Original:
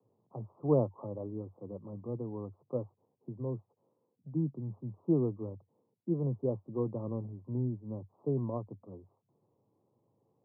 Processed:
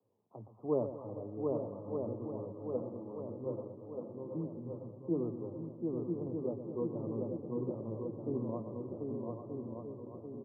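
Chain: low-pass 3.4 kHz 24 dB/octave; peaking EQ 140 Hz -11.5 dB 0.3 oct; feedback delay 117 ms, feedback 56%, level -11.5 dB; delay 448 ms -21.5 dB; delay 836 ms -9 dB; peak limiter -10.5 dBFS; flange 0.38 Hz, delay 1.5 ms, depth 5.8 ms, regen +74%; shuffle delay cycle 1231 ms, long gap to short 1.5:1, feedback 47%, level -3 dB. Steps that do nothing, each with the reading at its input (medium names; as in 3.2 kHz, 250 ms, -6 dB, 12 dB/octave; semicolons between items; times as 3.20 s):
low-pass 3.4 kHz: input has nothing above 720 Hz; peak limiter -10.5 dBFS: peak at its input -15.5 dBFS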